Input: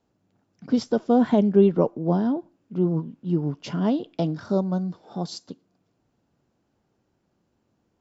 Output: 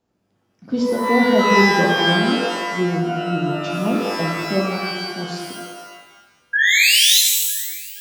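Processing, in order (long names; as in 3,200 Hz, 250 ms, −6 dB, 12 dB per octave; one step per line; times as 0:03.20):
sound drawn into the spectrogram rise, 0:06.53–0:07.20, 1,600–4,200 Hz −17 dBFS
feedback echo with a band-pass in the loop 475 ms, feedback 56%, band-pass 1,900 Hz, level −21.5 dB
reverb with rising layers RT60 1.1 s, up +12 semitones, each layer −2 dB, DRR −0.5 dB
level −1.5 dB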